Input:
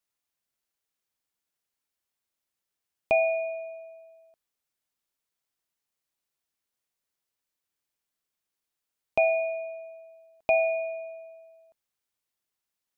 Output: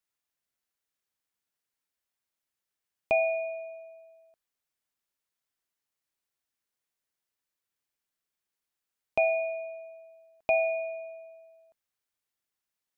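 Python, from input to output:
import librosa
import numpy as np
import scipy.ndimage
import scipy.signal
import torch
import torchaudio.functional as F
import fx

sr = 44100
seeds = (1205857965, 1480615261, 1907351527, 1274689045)

y = fx.peak_eq(x, sr, hz=1700.0, db=2.5, octaves=0.77)
y = F.gain(torch.from_numpy(y), -2.5).numpy()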